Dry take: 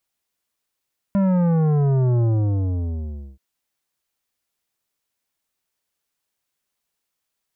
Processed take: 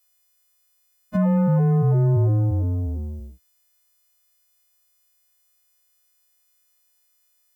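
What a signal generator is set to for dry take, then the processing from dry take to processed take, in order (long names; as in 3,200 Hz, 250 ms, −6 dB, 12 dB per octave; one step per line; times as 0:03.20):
bass drop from 200 Hz, over 2.23 s, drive 11.5 dB, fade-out 1.16 s, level −16.5 dB
every partial snapped to a pitch grid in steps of 3 semitones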